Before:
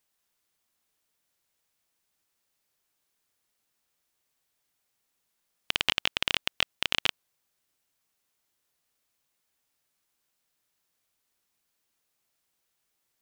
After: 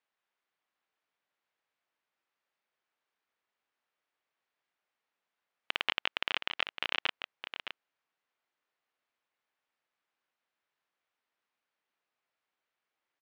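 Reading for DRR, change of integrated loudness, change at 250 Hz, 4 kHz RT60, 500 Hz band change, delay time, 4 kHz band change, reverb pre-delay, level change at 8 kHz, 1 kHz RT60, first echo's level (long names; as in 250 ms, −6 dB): no reverb audible, −6.0 dB, −8.0 dB, no reverb audible, −3.5 dB, 614 ms, −6.5 dB, no reverb audible, below −15 dB, no reverb audible, −9.5 dB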